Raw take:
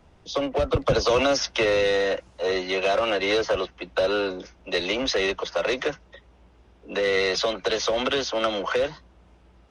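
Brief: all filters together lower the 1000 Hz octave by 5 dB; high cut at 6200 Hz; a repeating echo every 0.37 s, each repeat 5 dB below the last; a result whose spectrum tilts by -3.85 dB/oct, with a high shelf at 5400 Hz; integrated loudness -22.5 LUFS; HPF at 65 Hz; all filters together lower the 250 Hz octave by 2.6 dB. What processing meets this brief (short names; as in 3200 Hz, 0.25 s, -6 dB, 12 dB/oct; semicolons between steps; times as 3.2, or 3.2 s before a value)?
HPF 65 Hz; LPF 6200 Hz; bell 250 Hz -3 dB; bell 1000 Hz -7 dB; high shelf 5400 Hz -3.5 dB; feedback echo 0.37 s, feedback 56%, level -5 dB; gain +3 dB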